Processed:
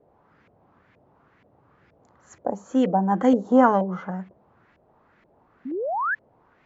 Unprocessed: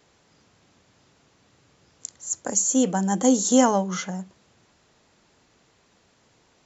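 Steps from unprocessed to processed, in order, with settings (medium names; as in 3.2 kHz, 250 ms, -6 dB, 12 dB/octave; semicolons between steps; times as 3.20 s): painted sound rise, 5.65–6.15 s, 240–1800 Hz -31 dBFS; LFO low-pass saw up 2.1 Hz 540–2200 Hz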